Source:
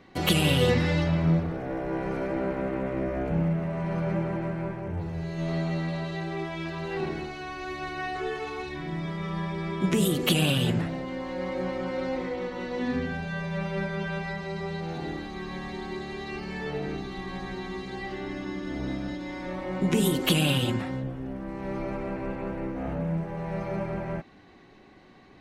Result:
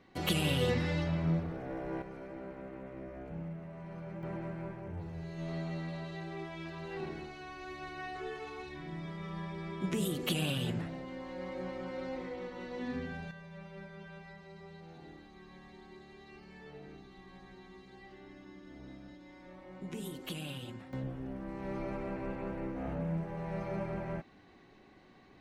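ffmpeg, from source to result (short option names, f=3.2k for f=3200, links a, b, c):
-af "asetnsamples=n=441:p=0,asendcmd='2.02 volume volume -16dB;4.23 volume volume -9.5dB;13.31 volume volume -18dB;20.93 volume volume -6dB',volume=-8dB"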